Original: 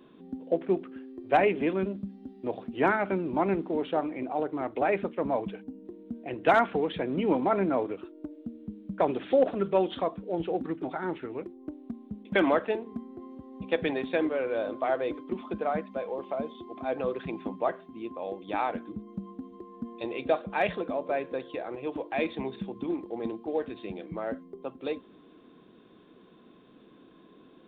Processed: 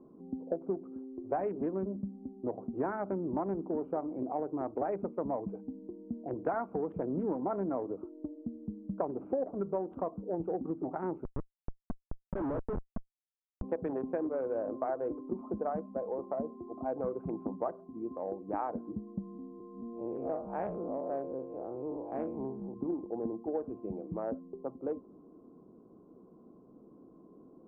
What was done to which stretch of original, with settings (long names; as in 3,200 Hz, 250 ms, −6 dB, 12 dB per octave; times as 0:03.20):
0:11.24–0:13.62: comparator with hysteresis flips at −28.5 dBFS
0:19.22–0:22.74: spectrum smeared in time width 115 ms
whole clip: adaptive Wiener filter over 25 samples; low-pass filter 1,300 Hz 24 dB per octave; downward compressor 6 to 1, threshold −30 dBFS